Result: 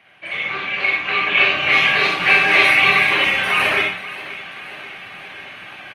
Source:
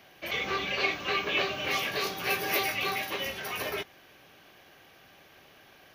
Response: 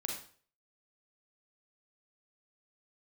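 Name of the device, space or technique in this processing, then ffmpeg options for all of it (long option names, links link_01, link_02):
far-field microphone of a smart speaker: -filter_complex "[0:a]highpass=frequency=55:width=0.5412,highpass=frequency=55:width=1.3066,asettb=1/sr,asplit=3[link_01][link_02][link_03];[link_01]atrim=end=1.254[link_04];[link_02]atrim=start=1.25:end=2.65,asetpts=PTS-STARTPTS,afade=type=in:duration=0.004:curve=qsin,afade=type=out:start_time=1.396:duration=0.004:curve=qsin,acrossover=split=7600[link_05][link_06];[link_06]acompressor=threshold=-48dB:ratio=4:attack=1:release=60[link_07];[link_05][link_07]amix=inputs=2:normalize=0[link_08];[link_03]atrim=start=2.646[link_09];[link_04][link_08]acrossfade=duration=0.004:curve1=hsin:curve2=qsin[link_10];[link_10][link_09]acrossfade=duration=0.004:curve1=qsin:curve2=hsin,firequalizer=gain_entry='entry(170,0);entry(390,-7);entry(730,1);entry(2300,8);entry(5500,-12);entry(9100,0);entry(14000,-24)':delay=0.05:min_phase=1,aecho=1:1:534|1068|1602|2136|2670:0.141|0.0777|0.0427|0.0235|0.0129[link_11];[1:a]atrim=start_sample=2205[link_12];[link_11][link_12]afir=irnorm=-1:irlink=0,highpass=96,dynaudnorm=framelen=400:gausssize=7:maxgain=12.5dB,volume=2.5dB" -ar 48000 -c:a libopus -b:a 24k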